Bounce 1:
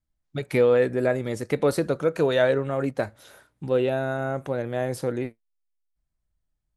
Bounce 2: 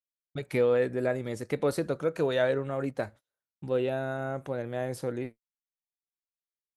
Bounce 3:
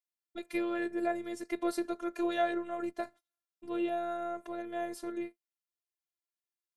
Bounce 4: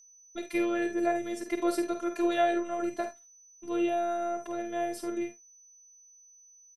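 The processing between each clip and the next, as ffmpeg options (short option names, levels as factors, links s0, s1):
-af "agate=range=0.0141:threshold=0.01:ratio=16:detection=peak,volume=0.531"
-af "highpass=180,afftfilt=real='hypot(re,im)*cos(PI*b)':imag='0':win_size=512:overlap=0.75"
-af "aecho=1:1:49|71:0.398|0.188,aeval=exprs='val(0)+0.00126*sin(2*PI*6000*n/s)':c=same,volume=1.5"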